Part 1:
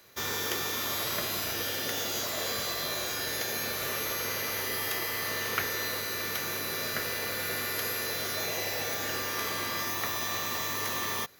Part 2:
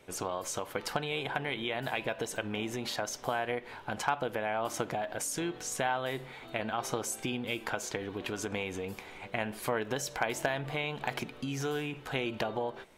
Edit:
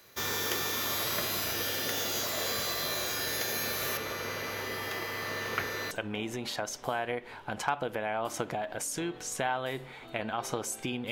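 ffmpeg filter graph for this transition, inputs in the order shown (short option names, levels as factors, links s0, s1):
-filter_complex "[0:a]asettb=1/sr,asplit=3[s0][s1][s2];[s0]atrim=end=3.974[s3];[s1]atrim=start=3.97:end=5.91,asetpts=PTS-STARTPTS,afade=t=in:d=0.004:c=qsin,afade=t=out:st=1.936:d=0.004:c=qsin,lowpass=f=2600:p=1[s4];[s2]atrim=start=5.906[s5];[s3][s4]acrossfade=d=0.004:c1=hsin:c2=qsin[s6];[s6][s5]acrossfade=d=0.004:c1=qsin:c2=hsin,apad=whole_dur=11.11,atrim=end=11.11,atrim=end=5.912[s7];[1:a]atrim=start=2.308:end=7.51[s8];[s7][s8]acrossfade=d=0.004:c1=hsin:c2=hsin"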